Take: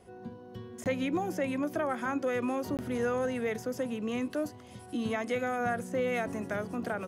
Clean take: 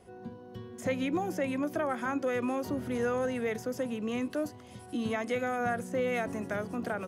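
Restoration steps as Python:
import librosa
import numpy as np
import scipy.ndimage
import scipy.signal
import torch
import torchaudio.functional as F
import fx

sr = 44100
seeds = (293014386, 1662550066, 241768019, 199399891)

y = fx.fix_interpolate(x, sr, at_s=(0.84, 2.77), length_ms=18.0)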